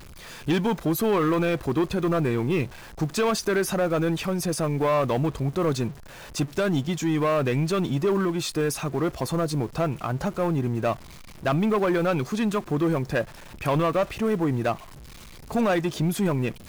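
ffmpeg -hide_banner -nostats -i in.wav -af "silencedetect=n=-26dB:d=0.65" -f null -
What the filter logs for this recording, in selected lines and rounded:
silence_start: 14.73
silence_end: 15.51 | silence_duration: 0.77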